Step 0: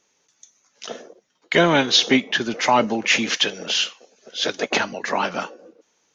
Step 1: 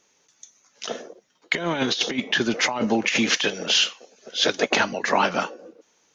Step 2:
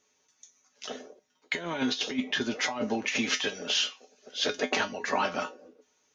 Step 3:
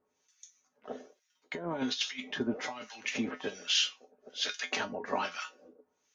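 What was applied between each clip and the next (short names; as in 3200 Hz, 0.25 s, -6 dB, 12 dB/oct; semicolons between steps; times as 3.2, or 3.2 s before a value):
negative-ratio compressor -20 dBFS, ratio -0.5
resonator 85 Hz, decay 0.16 s, harmonics odd, mix 80%
harmonic tremolo 1.2 Hz, depth 100%, crossover 1300 Hz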